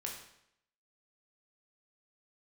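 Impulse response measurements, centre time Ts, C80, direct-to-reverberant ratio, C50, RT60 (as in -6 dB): 35 ms, 7.5 dB, -1.0 dB, 4.5 dB, 0.75 s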